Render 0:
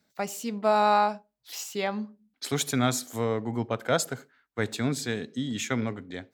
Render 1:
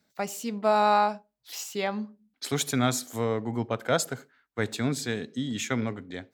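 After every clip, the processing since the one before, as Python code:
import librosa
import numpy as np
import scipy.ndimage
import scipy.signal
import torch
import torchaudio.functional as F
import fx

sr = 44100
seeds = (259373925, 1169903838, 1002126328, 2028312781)

y = x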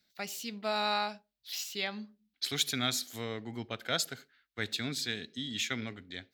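y = fx.graphic_eq_10(x, sr, hz=(125, 250, 500, 1000, 4000, 8000), db=(-10, -6, -9, -11, 6, -7))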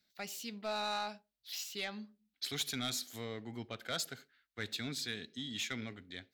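y = 10.0 ** (-25.0 / 20.0) * np.tanh(x / 10.0 ** (-25.0 / 20.0))
y = F.gain(torch.from_numpy(y), -3.5).numpy()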